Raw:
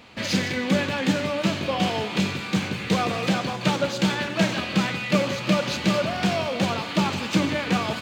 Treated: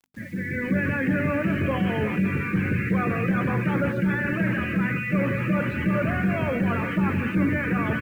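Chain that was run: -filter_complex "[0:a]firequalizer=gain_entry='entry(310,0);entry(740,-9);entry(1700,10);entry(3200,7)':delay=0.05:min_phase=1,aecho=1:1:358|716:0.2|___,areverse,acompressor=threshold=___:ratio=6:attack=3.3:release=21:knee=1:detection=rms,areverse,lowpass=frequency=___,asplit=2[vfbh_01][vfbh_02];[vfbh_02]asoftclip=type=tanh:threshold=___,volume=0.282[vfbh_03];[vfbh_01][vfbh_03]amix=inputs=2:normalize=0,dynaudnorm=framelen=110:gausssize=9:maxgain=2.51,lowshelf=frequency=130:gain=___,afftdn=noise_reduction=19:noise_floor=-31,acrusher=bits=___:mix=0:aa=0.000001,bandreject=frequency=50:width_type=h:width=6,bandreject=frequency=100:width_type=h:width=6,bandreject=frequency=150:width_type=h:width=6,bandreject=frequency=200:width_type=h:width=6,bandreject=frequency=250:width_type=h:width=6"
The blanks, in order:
0.0399, 0.0398, 1300, 0.02, 8.5, 8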